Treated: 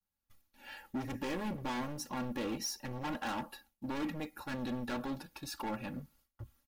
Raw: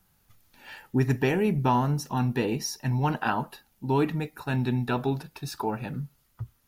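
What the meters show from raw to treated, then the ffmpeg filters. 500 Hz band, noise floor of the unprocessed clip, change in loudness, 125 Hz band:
−13.0 dB, −67 dBFS, −12.0 dB, −19.0 dB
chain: -af "asoftclip=type=hard:threshold=-29.5dB,agate=range=-33dB:threshold=-53dB:ratio=3:detection=peak,aecho=1:1:3.6:0.66,volume=-6dB"

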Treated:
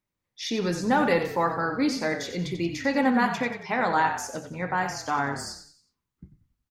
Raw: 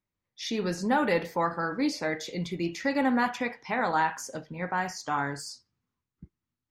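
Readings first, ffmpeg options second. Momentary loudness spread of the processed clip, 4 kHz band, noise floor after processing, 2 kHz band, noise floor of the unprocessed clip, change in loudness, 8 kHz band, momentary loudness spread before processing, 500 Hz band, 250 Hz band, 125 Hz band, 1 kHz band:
11 LU, +3.0 dB, −85 dBFS, +3.0 dB, below −85 dBFS, +3.0 dB, +3.0 dB, 12 LU, +3.0 dB, +3.0 dB, +3.5 dB, +3.0 dB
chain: -filter_complex "[0:a]bandreject=frequency=50:width_type=h:width=6,bandreject=frequency=100:width_type=h:width=6,bandreject=frequency=150:width_type=h:width=6,bandreject=frequency=200:width_type=h:width=6,asplit=5[link_01][link_02][link_03][link_04][link_05];[link_02]adelay=91,afreqshift=-34,volume=-9.5dB[link_06];[link_03]adelay=182,afreqshift=-68,volume=-17.2dB[link_07];[link_04]adelay=273,afreqshift=-102,volume=-25dB[link_08];[link_05]adelay=364,afreqshift=-136,volume=-32.7dB[link_09];[link_01][link_06][link_07][link_08][link_09]amix=inputs=5:normalize=0,volume=2.5dB"

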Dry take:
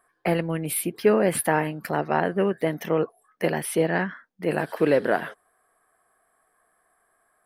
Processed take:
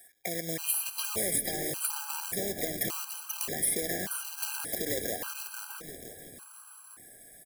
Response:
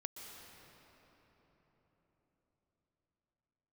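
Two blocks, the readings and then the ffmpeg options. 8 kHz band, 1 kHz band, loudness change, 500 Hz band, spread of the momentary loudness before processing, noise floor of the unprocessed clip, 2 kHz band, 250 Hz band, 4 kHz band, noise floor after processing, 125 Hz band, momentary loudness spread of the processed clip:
+3.5 dB, −14.5 dB, −6.5 dB, −14.5 dB, 7 LU, −69 dBFS, −9.5 dB, −14.5 dB, +2.0 dB, −54 dBFS, −14.0 dB, 20 LU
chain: -filter_complex "[0:a]equalizer=frequency=63:width_type=o:width=1.8:gain=-10,acompressor=threshold=-32dB:ratio=4,alimiter=level_in=4dB:limit=-24dB:level=0:latency=1:release=226,volume=-4dB,acrossover=split=520|1200|3300[link_01][link_02][link_03][link_04];[link_01]acompressor=threshold=-40dB:ratio=4[link_05];[link_02]acompressor=threshold=-45dB:ratio=4[link_06];[link_03]acompressor=threshold=-58dB:ratio=4[link_07];[link_04]acompressor=threshold=-53dB:ratio=4[link_08];[link_05][link_06][link_07][link_08]amix=inputs=4:normalize=0,acrusher=bits=3:mode=log:mix=0:aa=0.000001,asplit=6[link_09][link_10][link_11][link_12][link_13][link_14];[link_10]adelay=485,afreqshift=-67,volume=-4.5dB[link_15];[link_11]adelay=970,afreqshift=-134,volume=-12dB[link_16];[link_12]adelay=1455,afreqshift=-201,volume=-19.6dB[link_17];[link_13]adelay=1940,afreqshift=-268,volume=-27.1dB[link_18];[link_14]adelay=2425,afreqshift=-335,volume=-34.6dB[link_19];[link_09][link_15][link_16][link_17][link_18][link_19]amix=inputs=6:normalize=0,crystalizer=i=8.5:c=0,asplit=2[link_20][link_21];[1:a]atrim=start_sample=2205[link_22];[link_21][link_22]afir=irnorm=-1:irlink=0,volume=0dB[link_23];[link_20][link_23]amix=inputs=2:normalize=0,aeval=exprs='sgn(val(0))*max(abs(val(0))-0.00168,0)':channel_layout=same,afftfilt=real='re*gt(sin(2*PI*0.86*pts/sr)*(1-2*mod(floor(b*sr/1024/800),2)),0)':imag='im*gt(sin(2*PI*0.86*pts/sr)*(1-2*mod(floor(b*sr/1024/800),2)),0)':win_size=1024:overlap=0.75"

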